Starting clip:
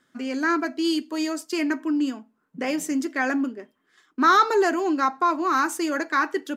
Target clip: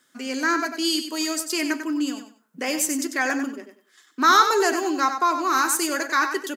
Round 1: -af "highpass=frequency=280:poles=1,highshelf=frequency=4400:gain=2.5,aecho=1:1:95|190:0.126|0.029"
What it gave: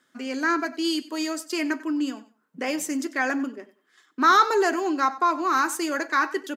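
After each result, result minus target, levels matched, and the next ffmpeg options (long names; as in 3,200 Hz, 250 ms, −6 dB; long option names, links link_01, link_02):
8,000 Hz band −7.0 dB; echo-to-direct −9.5 dB
-af "highpass=frequency=280:poles=1,highshelf=frequency=4400:gain=13.5,aecho=1:1:95|190:0.126|0.029"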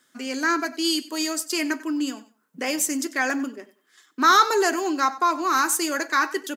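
echo-to-direct −9.5 dB
-af "highpass=frequency=280:poles=1,highshelf=frequency=4400:gain=13.5,aecho=1:1:95|190|285:0.376|0.0864|0.0199"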